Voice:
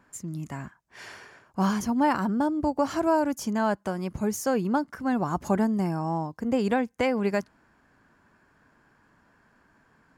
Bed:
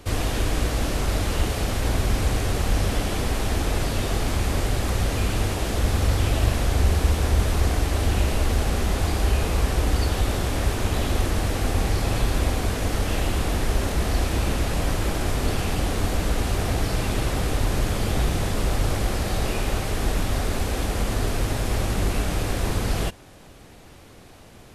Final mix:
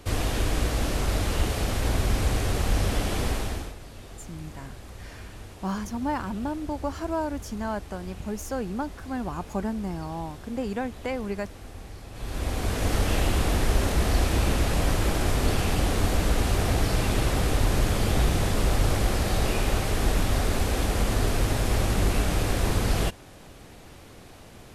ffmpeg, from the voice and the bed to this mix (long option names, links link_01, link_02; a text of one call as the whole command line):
ffmpeg -i stem1.wav -i stem2.wav -filter_complex "[0:a]adelay=4050,volume=-5.5dB[link_01];[1:a]volume=17dB,afade=type=out:start_time=3.28:duration=0.47:silence=0.141254,afade=type=in:start_time=12.13:duration=0.8:silence=0.112202[link_02];[link_01][link_02]amix=inputs=2:normalize=0" out.wav